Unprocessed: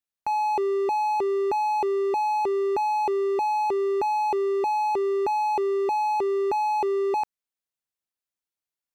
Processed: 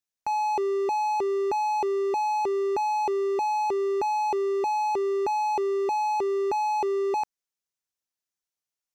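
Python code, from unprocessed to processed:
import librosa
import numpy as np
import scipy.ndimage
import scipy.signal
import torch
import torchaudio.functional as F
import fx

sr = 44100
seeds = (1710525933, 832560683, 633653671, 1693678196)

y = fx.peak_eq(x, sr, hz=6000.0, db=6.5, octaves=0.62)
y = y * 10.0 ** (-1.5 / 20.0)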